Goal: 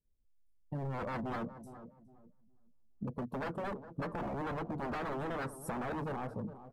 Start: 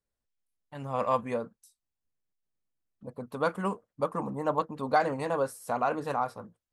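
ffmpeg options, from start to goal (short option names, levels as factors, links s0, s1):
-filter_complex "[0:a]aeval=exprs='(tanh(17.8*val(0)+0.1)-tanh(0.1))/17.8':c=same,firequalizer=gain_entry='entry(250,0);entry(690,-14);entry(1300,-22)':delay=0.05:min_phase=1,aeval=exprs='0.0106*(abs(mod(val(0)/0.0106+3,4)-2)-1)':c=same,acompressor=threshold=0.002:ratio=5,asplit=2[s0][s1];[s1]adelay=413,lowpass=f=1500:p=1,volume=0.251,asplit=2[s2][s3];[s3]adelay=413,lowpass=f=1500:p=1,volume=0.35,asplit=2[s4][s5];[s5]adelay=413,lowpass=f=1500:p=1,volume=0.35,asplit=2[s6][s7];[s7]adelay=413,lowpass=f=1500:p=1,volume=0.35[s8];[s0][s2][s4][s6][s8]amix=inputs=5:normalize=0,afftdn=nr=13:nf=-72,highshelf=f=3700:g=11.5,volume=6.68"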